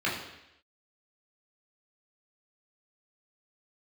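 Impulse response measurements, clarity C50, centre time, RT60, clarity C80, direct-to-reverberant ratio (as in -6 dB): 5.0 dB, 44 ms, 0.85 s, 7.5 dB, -7.0 dB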